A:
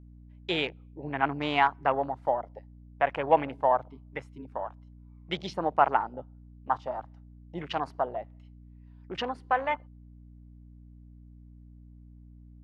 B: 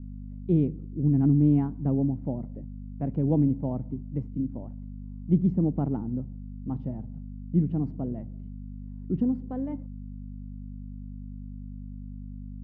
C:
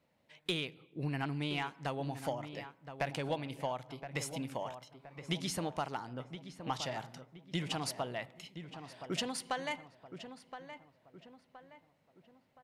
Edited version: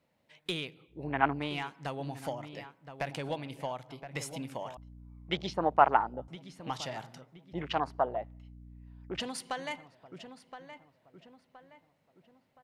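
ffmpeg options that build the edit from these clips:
-filter_complex "[0:a]asplit=3[a][b][c];[2:a]asplit=4[d][e][f][g];[d]atrim=end=1.11[h];[a]atrim=start=0.87:end=1.55[i];[e]atrim=start=1.31:end=4.772[j];[b]atrim=start=4.768:end=6.282[k];[f]atrim=start=6.278:end=7.532[l];[c]atrim=start=7.528:end=9.202[m];[g]atrim=start=9.198[n];[h][i]acrossfade=d=0.24:c1=tri:c2=tri[o];[o][j]acrossfade=d=0.24:c1=tri:c2=tri[p];[p][k]acrossfade=d=0.004:c1=hsin:c2=hsin[q];[q][l]acrossfade=d=0.004:c1=hsin:c2=hsin[r];[r][m]acrossfade=d=0.004:c1=hsin:c2=hsin[s];[s][n]acrossfade=d=0.004:c1=hsin:c2=hsin"

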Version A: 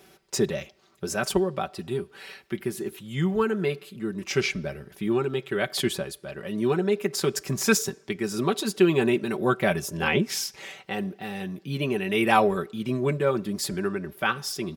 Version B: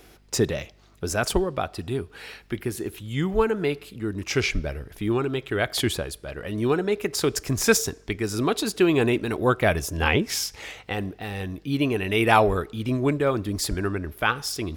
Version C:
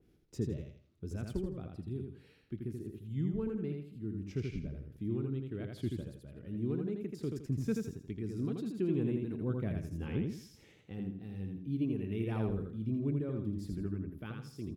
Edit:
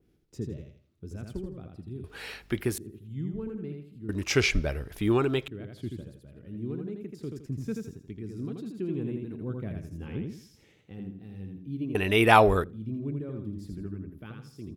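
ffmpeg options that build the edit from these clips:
-filter_complex "[1:a]asplit=3[a][b][c];[2:a]asplit=4[d][e][f][g];[d]atrim=end=2.042[h];[a]atrim=start=2.038:end=2.782[i];[e]atrim=start=2.778:end=4.092[j];[b]atrim=start=4.088:end=5.482[k];[f]atrim=start=5.478:end=11.952[l];[c]atrim=start=11.948:end=12.642[m];[g]atrim=start=12.638[n];[h][i]acrossfade=d=0.004:c1=hsin:c2=hsin[o];[o][j]acrossfade=d=0.004:c1=hsin:c2=hsin[p];[p][k]acrossfade=d=0.004:c1=hsin:c2=hsin[q];[q][l]acrossfade=d=0.004:c1=hsin:c2=hsin[r];[r][m]acrossfade=d=0.004:c1=hsin:c2=hsin[s];[s][n]acrossfade=d=0.004:c1=hsin:c2=hsin"

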